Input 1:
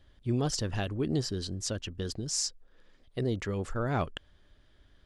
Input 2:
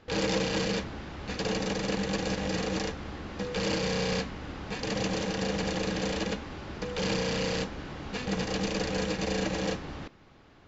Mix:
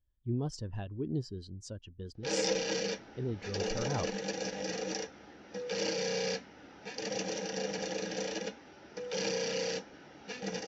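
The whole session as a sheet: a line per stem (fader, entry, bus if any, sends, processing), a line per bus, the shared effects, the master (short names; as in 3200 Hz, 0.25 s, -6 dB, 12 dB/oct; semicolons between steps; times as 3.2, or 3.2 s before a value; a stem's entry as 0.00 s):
-9.0 dB, 0.00 s, no send, bell 960 Hz +7 dB 0.22 oct
-3.0 dB, 2.15 s, no send, HPF 500 Hz 6 dB/oct; bell 5700 Hz +10 dB 0.25 oct; notch 1100 Hz, Q 6.2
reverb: off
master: spectral expander 1.5:1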